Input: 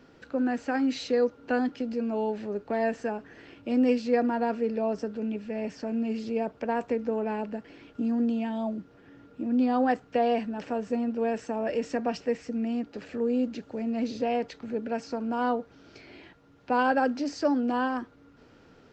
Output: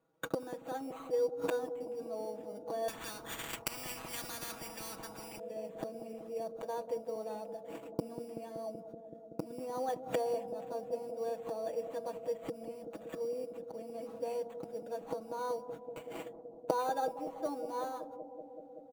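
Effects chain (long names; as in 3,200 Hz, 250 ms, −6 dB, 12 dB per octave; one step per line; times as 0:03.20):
noise gate −46 dBFS, range −38 dB
low-shelf EQ 230 Hz +8 dB
gate with flip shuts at −33 dBFS, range −30 dB
high-pass filter 130 Hz 6 dB per octave
sample-rate reduction 5,200 Hz, jitter 0%
flat-topped bell 770 Hz +9 dB
notch filter 5,200 Hz, Q 5.6
comb filter 6.2 ms, depth 78%
bucket-brigade delay 189 ms, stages 1,024, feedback 85%, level −10.5 dB
0:02.88–0:05.40: every bin compressed towards the loudest bin 10 to 1
level +9.5 dB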